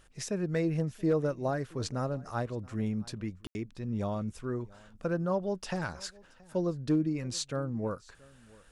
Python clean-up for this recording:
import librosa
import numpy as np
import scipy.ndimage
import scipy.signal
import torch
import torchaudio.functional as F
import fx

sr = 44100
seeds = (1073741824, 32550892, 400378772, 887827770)

y = fx.fix_declip(x, sr, threshold_db=-20.0)
y = fx.fix_ambience(y, sr, seeds[0], print_start_s=8.17, print_end_s=8.67, start_s=3.47, end_s=3.55)
y = fx.fix_echo_inverse(y, sr, delay_ms=676, level_db=-24.0)